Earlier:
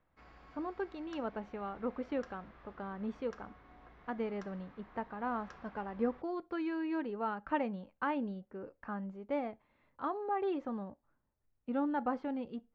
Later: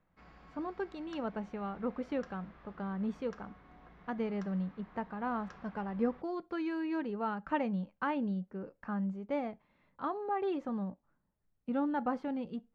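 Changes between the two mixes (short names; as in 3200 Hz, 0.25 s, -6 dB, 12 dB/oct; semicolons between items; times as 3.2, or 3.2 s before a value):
speech: remove air absorption 92 m; master: add bell 180 Hz +10.5 dB 0.39 oct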